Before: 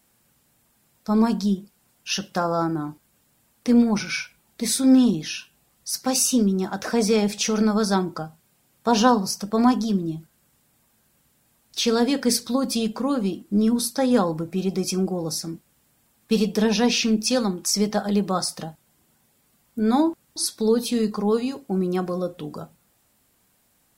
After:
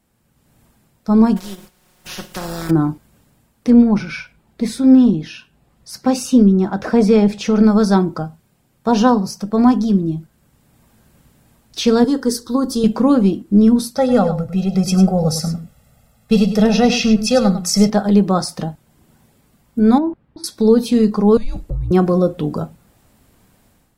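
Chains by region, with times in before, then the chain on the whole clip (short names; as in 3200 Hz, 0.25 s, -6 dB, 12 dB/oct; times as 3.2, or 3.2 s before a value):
1.36–2.69 spectral contrast lowered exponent 0.33 + comb 5.5 ms, depth 98% + compressor 3:1, threshold -39 dBFS
3.7–7.64 high shelf 4500 Hz -8.5 dB + notch 5900 Hz, Q 26
12.04–12.84 fixed phaser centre 650 Hz, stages 6 + mismatched tape noise reduction encoder only
13.96–17.9 comb 1.5 ms, depth 99% + echo 0.102 s -11 dB
19.98–20.44 compressor 4:1, threshold -23 dBFS + air absorption 470 m
21.37–21.91 compressor 16:1, threshold -32 dBFS + frequency shift -240 Hz
whole clip: tilt -2 dB/oct; AGC; gain -1 dB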